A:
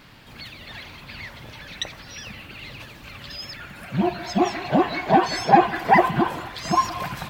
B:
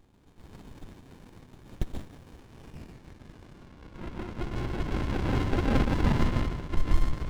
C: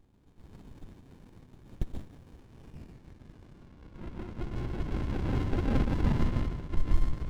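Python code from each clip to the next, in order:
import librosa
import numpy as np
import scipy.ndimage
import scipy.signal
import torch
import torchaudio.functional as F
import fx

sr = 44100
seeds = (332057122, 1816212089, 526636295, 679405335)

y1 = fx.rev_plate(x, sr, seeds[0], rt60_s=1.2, hf_ratio=0.3, predelay_ms=115, drr_db=-3.0)
y1 = fx.filter_sweep_bandpass(y1, sr, from_hz=3600.0, to_hz=1100.0, start_s=2.46, end_s=3.71, q=7.6)
y1 = fx.running_max(y1, sr, window=65)
y1 = F.gain(torch.from_numpy(y1), 4.5).numpy()
y2 = fx.low_shelf(y1, sr, hz=420.0, db=6.0)
y2 = F.gain(torch.from_numpy(y2), -7.5).numpy()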